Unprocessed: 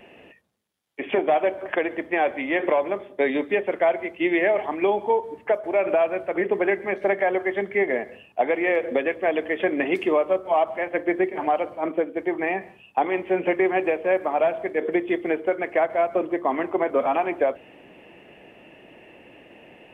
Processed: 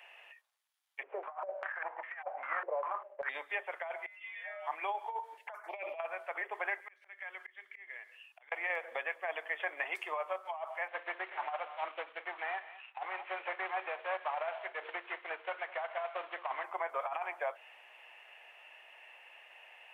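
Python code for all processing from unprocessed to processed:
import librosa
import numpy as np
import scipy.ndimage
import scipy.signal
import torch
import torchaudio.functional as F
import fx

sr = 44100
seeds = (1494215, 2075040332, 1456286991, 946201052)

y = fx.chain(x, sr, fx.cvsd(bps=16000),
    fx.tilt_eq(slope=2.0),
    fx.filter_held_lowpass(hz=5.0, low_hz=470.0, high_hz=2000.0), at=(1.03, 3.29))
y = fx.chain(y, sr, fx.peak_eq(hz=320.0, db=-12.5, octaves=0.21),
    fx.stiff_resonator(f0_hz=150.0, decay_s=0.55, stiffness=0.002),
    fx.sustainer(db_per_s=20.0), at=(4.06, 4.67))
y = fx.chain(y, sr, fx.low_shelf(hz=310.0, db=3.5),
    fx.over_compress(threshold_db=-23.0, ratio=-0.5),
    fx.env_phaser(low_hz=170.0, high_hz=1500.0, full_db=-20.5), at=(5.37, 6.0))
y = fx.chain(y, sr, fx.peak_eq(hz=710.0, db=-14.5, octaves=1.3),
    fx.auto_swell(attack_ms=520.0), at=(6.8, 8.52))
y = fx.chain(y, sr, fx.cvsd(bps=16000),
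    fx.echo_single(ms=211, db=-19.0), at=(10.88, 16.64))
y = scipy.signal.sosfilt(scipy.signal.butter(4, 850.0, 'highpass', fs=sr, output='sos'), y)
y = fx.dynamic_eq(y, sr, hz=3100.0, q=0.7, threshold_db=-42.0, ratio=4.0, max_db=-7)
y = fx.over_compress(y, sr, threshold_db=-30.0, ratio=-0.5)
y = F.gain(torch.from_numpy(y), -4.5).numpy()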